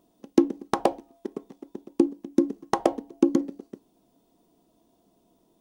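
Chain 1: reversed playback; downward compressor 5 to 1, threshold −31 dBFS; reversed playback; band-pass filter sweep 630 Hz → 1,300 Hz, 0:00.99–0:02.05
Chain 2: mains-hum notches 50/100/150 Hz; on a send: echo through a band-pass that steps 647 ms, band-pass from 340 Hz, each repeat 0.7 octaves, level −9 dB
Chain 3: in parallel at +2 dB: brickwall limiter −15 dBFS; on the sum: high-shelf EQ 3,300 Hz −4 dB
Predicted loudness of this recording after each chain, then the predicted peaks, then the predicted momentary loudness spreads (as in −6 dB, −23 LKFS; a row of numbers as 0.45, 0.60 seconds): −47.5, −27.0, −22.5 LKFS; −22.0, −4.0, −1.5 dBFS; 20, 18, 17 LU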